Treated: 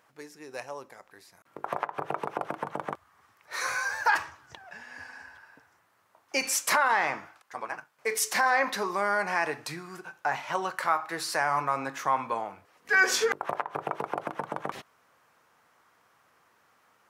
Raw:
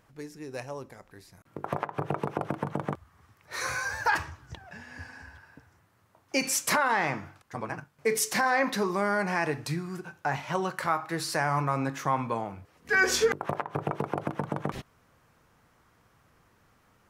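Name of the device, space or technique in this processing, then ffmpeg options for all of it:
filter by subtraction: -filter_complex "[0:a]asettb=1/sr,asplit=3[s0][s1][s2];[s0]atrim=end=7.264[s3];[s1]atrim=start=7.26:end=8.25,asetpts=PTS-STARTPTS,afade=t=in:d=0.004:c=qsin,afade=t=out:st=0.986:d=0.004:c=qsin,equalizer=f=110:t=o:w=2.9:g=-7[s4];[s2]atrim=start=8.246[s5];[s3][s4]acrossfade=d=0.004:c1=hsin:c2=qsin[s6];[s6][s5]acrossfade=d=0.004:c1=qsin:c2=hsin,asplit=2[s7][s8];[s8]lowpass=920,volume=-1[s9];[s7][s9]amix=inputs=2:normalize=0"

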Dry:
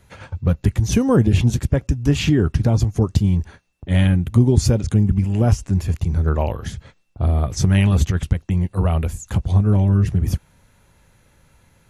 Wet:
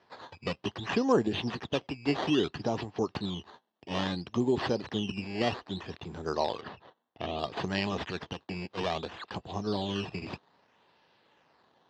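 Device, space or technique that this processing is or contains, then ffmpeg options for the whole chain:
circuit-bent sampling toy: -filter_complex "[0:a]acrusher=samples=12:mix=1:aa=0.000001:lfo=1:lforange=12:lforate=0.61,highpass=420,equalizer=f=550:t=q:w=4:g=-5,equalizer=f=1400:t=q:w=4:g=-7,equalizer=f=2200:t=q:w=4:g=-8,lowpass=f=4400:w=0.5412,lowpass=f=4400:w=1.3066,asettb=1/sr,asplit=3[s0][s1][s2];[s0]atrim=end=6.614[s3];[s1]atrim=start=6.61:end=7.39,asetpts=PTS-STARTPTS,afade=t=in:d=0.004:c=qsin,afade=t=out:st=0.776:d=0.004:c=qsin,lowpass=3600[s4];[s2]atrim=start=7.386[s5];[s3][s4]acrossfade=d=0.004:c1=hsin:c2=qsin[s6];[s6][s5]acrossfade=d=0.004:c1=qsin:c2=hsin,volume=0.841"

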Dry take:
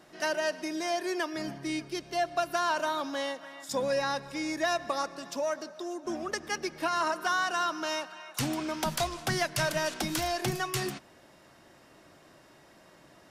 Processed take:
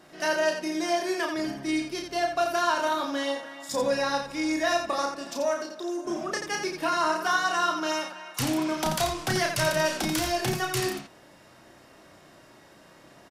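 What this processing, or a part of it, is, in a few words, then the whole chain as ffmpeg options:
slapback doubling: -filter_complex "[0:a]asplit=3[s0][s1][s2];[s1]adelay=32,volume=0.668[s3];[s2]adelay=86,volume=0.501[s4];[s0][s3][s4]amix=inputs=3:normalize=0,volume=1.19"

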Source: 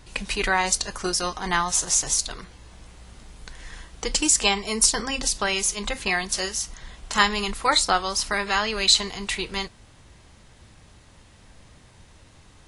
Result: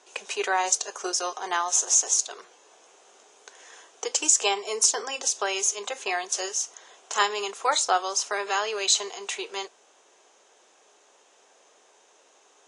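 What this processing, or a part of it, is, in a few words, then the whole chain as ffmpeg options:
phone speaker on a table: -af "highpass=f=410:w=0.5412,highpass=f=410:w=1.3066,equalizer=f=410:t=q:w=4:g=7,equalizer=f=720:t=q:w=4:g=4,equalizer=f=2000:t=q:w=4:g=-6,equalizer=f=4400:t=q:w=4:g=-7,equalizer=f=6500:t=q:w=4:g=8,lowpass=f=8400:w=0.5412,lowpass=f=8400:w=1.3066,volume=0.708"

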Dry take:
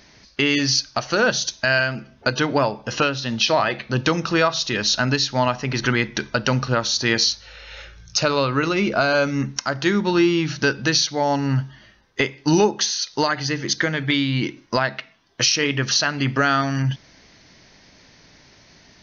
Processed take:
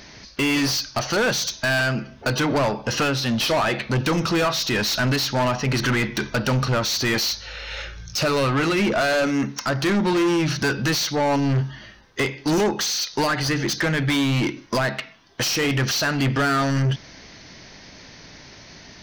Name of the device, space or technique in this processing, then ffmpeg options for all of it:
saturation between pre-emphasis and de-emphasis: -filter_complex "[0:a]asettb=1/sr,asplit=3[s0][s1][s2];[s0]atrim=end=8.934[s3];[s1]atrim=start=8.93:end=9.61,asetpts=PTS-STARTPTS,afade=t=in:d=0.004:c=qsin,afade=t=out:st=0.676:d=0.004:c=qsin,highpass=220[s4];[s2]atrim=start=9.606[s5];[s3][s4]acrossfade=d=0.004:c1=hsin:c2=qsin[s6];[s6][s5]acrossfade=d=0.004:c1=qsin:c2=hsin,highshelf=f=3700:g=7.5,asoftclip=type=tanh:threshold=0.0631,highshelf=f=3700:g=-7.5,volume=2.24"

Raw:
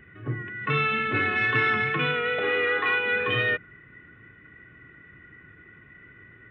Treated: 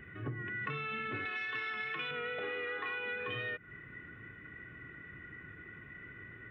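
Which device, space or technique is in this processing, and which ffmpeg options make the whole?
serial compression, leveller first: -filter_complex "[0:a]asettb=1/sr,asplit=3[s0][s1][s2];[s0]atrim=end=1.254[s3];[s1]atrim=start=1.25:end=2.11,asetpts=PTS-STARTPTS,afade=t=in:d=0.004:c=qsin,afade=t=out:st=0.856:d=0.004:c=qsin,aemphasis=mode=production:type=riaa[s4];[s2]atrim=start=2.106[s5];[s3][s4]acrossfade=d=0.004:c1=hsin:c2=qsin[s6];[s6][s5]acrossfade=d=0.004:c1=qsin:c2=hsin,acompressor=threshold=0.0316:ratio=2,acompressor=threshold=0.0158:ratio=6"

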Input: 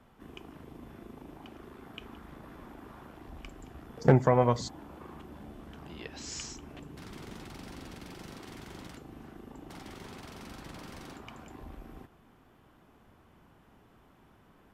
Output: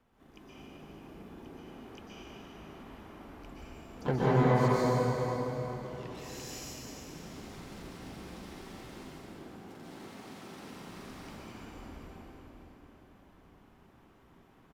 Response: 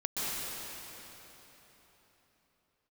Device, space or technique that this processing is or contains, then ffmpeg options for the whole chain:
shimmer-style reverb: -filter_complex "[0:a]asplit=3[s0][s1][s2];[s0]afade=t=out:st=8.91:d=0.02[s3];[s1]highpass=120,afade=t=in:st=8.91:d=0.02,afade=t=out:st=10.72:d=0.02[s4];[s2]afade=t=in:st=10.72:d=0.02[s5];[s3][s4][s5]amix=inputs=3:normalize=0,asplit=2[s6][s7];[s7]adelay=387,lowpass=f=1700:p=1,volume=0.251,asplit=2[s8][s9];[s9]adelay=387,lowpass=f=1700:p=1,volume=0.17[s10];[s6][s8][s10]amix=inputs=3:normalize=0,asplit=2[s11][s12];[s12]asetrate=88200,aresample=44100,atempo=0.5,volume=0.355[s13];[s11][s13]amix=inputs=2:normalize=0[s14];[1:a]atrim=start_sample=2205[s15];[s14][s15]afir=irnorm=-1:irlink=0,volume=0.355"

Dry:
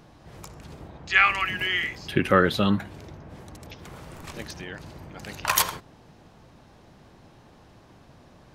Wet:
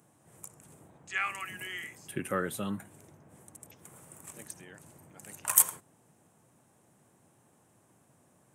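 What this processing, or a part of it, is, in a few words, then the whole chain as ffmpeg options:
budget condenser microphone: -af "highpass=f=100:w=0.5412,highpass=f=100:w=1.3066,highshelf=f=6300:t=q:w=3:g=12.5,volume=0.237"

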